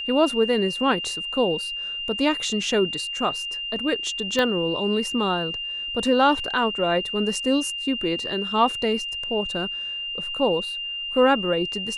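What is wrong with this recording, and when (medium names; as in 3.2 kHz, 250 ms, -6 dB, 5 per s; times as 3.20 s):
whine 2.8 kHz -28 dBFS
4.39 s: pop -11 dBFS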